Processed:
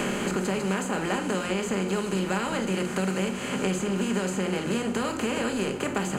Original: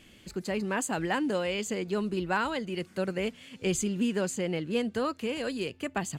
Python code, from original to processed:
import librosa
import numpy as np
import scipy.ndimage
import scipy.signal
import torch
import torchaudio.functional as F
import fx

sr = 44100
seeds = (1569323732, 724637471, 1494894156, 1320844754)

y = fx.bin_compress(x, sr, power=0.4)
y = fx.room_shoebox(y, sr, seeds[0], volume_m3=380.0, walls='furnished', distance_m=1.3)
y = fx.band_squash(y, sr, depth_pct=100)
y = y * librosa.db_to_amplitude(-6.0)